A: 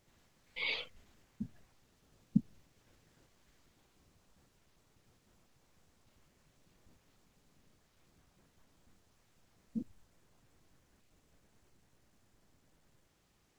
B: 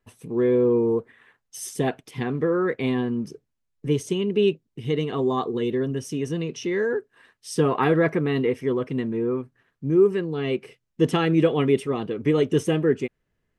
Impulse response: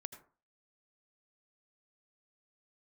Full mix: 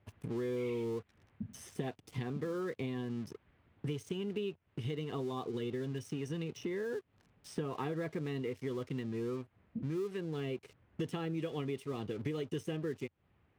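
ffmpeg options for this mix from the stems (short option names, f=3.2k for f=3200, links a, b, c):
-filter_complex "[0:a]lowpass=f=2.7k:w=0.5412,lowpass=f=2.7k:w=1.3066,volume=-1.5dB,asplit=2[a][b];[b]volume=-5dB[c];[1:a]highshelf=f=4.8k:g=-4,acompressor=threshold=-27dB:ratio=1.5,aeval=exprs='sgn(val(0))*max(abs(val(0))-0.00398,0)':c=same,volume=-1dB,asplit=2[d][e];[e]apad=whole_len=599282[f];[a][f]sidechaincompress=threshold=-40dB:ratio=8:attack=6.5:release=178[g];[2:a]atrim=start_sample=2205[h];[c][h]afir=irnorm=-1:irlink=0[i];[g][d][i]amix=inputs=3:normalize=0,highpass=47,equalizer=f=94:w=1.6:g=9,acrossover=split=1200|2800[j][k][l];[j]acompressor=threshold=-37dB:ratio=4[m];[k]acompressor=threshold=-57dB:ratio=4[n];[l]acompressor=threshold=-54dB:ratio=4[o];[m][n][o]amix=inputs=3:normalize=0"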